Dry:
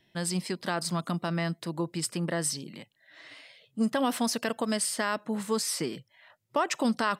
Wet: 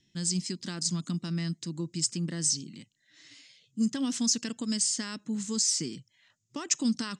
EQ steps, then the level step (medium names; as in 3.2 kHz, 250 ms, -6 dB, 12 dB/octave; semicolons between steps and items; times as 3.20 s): FFT filter 280 Hz 0 dB, 640 Hz -20 dB, 4.2 kHz -1 dB, 6.9 kHz +13 dB, 13 kHz -28 dB; 0.0 dB